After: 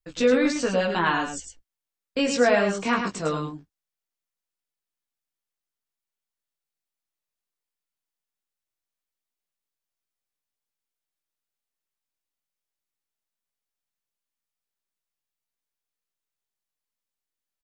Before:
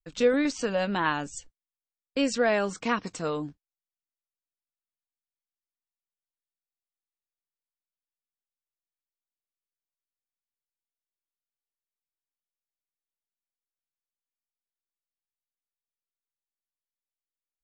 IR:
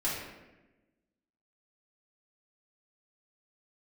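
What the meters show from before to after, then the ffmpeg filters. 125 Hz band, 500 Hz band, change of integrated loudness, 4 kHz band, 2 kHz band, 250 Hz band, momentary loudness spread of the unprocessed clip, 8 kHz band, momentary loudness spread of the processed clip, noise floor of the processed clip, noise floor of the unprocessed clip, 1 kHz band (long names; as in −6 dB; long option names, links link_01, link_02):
+4.5 dB, +4.0 dB, +4.0 dB, +4.5 dB, +4.5 dB, +3.5 dB, 11 LU, +4.5 dB, 12 LU, below −85 dBFS, below −85 dBFS, +4.0 dB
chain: -filter_complex "[0:a]flanger=delay=15.5:depth=5:speed=0.2,asplit=2[link_01][link_02];[link_02]aecho=0:1:105:0.473[link_03];[link_01][link_03]amix=inputs=2:normalize=0,volume=6.5dB"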